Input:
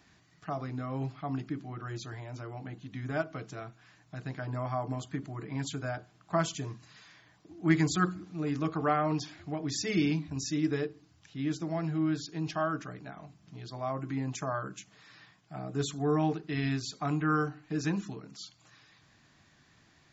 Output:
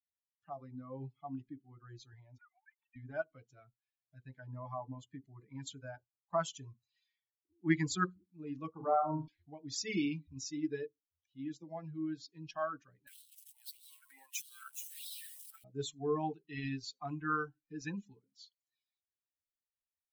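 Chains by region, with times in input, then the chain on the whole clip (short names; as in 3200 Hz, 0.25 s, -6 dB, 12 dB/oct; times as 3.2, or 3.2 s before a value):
2.38–2.96 sine-wave speech + steep high-pass 880 Hz
8.71–9.28 LPF 1100 Hz + notches 50/100/150/200/250/300 Hz + flutter echo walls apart 6.6 m, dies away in 0.52 s
13.07–15.64 switching spikes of -32.5 dBFS + LFO high-pass sine 1.6 Hz 730–3700 Hz
whole clip: per-bin expansion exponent 2; spectral noise reduction 10 dB; bell 78 Hz -7.5 dB 2.3 oct; gain -1 dB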